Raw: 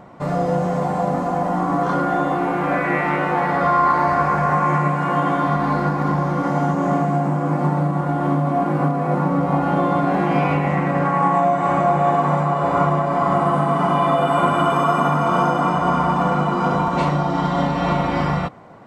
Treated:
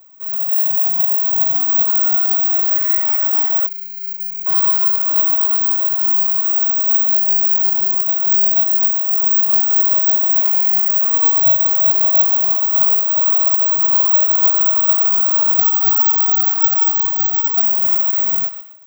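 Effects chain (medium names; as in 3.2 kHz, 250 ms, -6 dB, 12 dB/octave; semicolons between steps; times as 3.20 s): 15.57–17.60 s: formants replaced by sine waves; thinning echo 127 ms, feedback 39%, high-pass 840 Hz, level -6 dB; flange 0.44 Hz, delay 9 ms, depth 9.1 ms, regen -32%; level rider gain up to 8 dB; dynamic bell 3 kHz, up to -8 dB, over -37 dBFS, Q 1; 3.66–4.46 s: spectral selection erased 200–2100 Hz; careless resampling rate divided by 2×, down filtered, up zero stuff; tilt EQ +4 dB/octave; trim -16 dB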